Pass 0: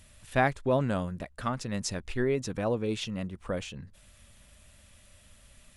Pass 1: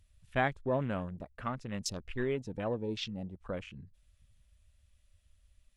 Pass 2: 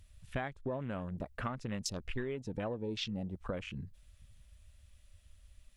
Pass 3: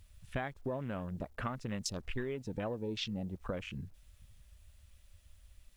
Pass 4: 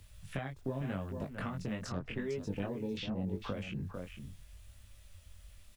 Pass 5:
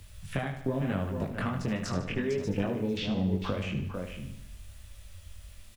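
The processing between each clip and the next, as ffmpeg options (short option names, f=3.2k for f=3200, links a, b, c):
-af "afwtdn=0.00794,equalizer=f=4.2k:w=0.63:g=4.5,volume=-5.5dB"
-af "acompressor=threshold=-40dB:ratio=20,volume=6.5dB"
-af "acrusher=bits=11:mix=0:aa=0.000001"
-filter_complex "[0:a]asplit=2[a][b];[b]adelay=449,volume=-11dB,highshelf=f=4k:g=-10.1[c];[a][c]amix=inputs=2:normalize=0,acrossover=split=81|330|2700[d][e][f][g];[d]acompressor=threshold=-58dB:ratio=4[h];[e]acompressor=threshold=-43dB:ratio=4[i];[f]acompressor=threshold=-48dB:ratio=4[j];[g]acompressor=threshold=-59dB:ratio=4[k];[h][i][j][k]amix=inputs=4:normalize=0,flanger=delay=19.5:depth=3.5:speed=0.83,volume=9dB"
-af "aecho=1:1:75|150|225|300|375|450:0.335|0.174|0.0906|0.0471|0.0245|0.0127,volume=6.5dB"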